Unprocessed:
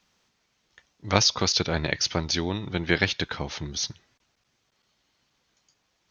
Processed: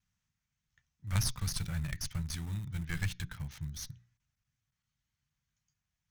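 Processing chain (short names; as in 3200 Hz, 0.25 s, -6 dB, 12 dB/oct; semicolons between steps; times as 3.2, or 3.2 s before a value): notches 60/120/180/240/300/360/420 Hz; vibrato 0.62 Hz 17 cents; in parallel at -8 dB: bit-crush 5-bit; on the sum: added harmonics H 6 -15 dB, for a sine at 1 dBFS; EQ curve 140 Hz 0 dB, 400 Hz -28 dB, 1700 Hz -13 dB, 4500 Hz -19 dB, 8000 Hz -8 dB; gain -3 dB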